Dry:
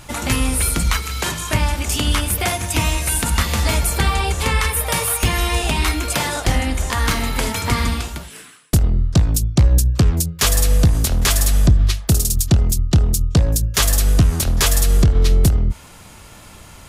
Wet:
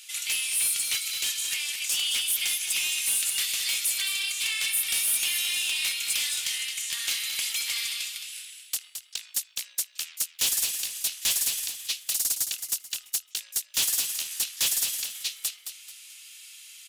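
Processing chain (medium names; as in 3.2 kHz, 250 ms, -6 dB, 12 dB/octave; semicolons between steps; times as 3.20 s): Chebyshev high-pass 2.7 kHz, order 3; saturation -20.5 dBFS, distortion -10 dB; on a send: frequency-shifting echo 218 ms, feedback 35%, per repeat +37 Hz, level -8 dB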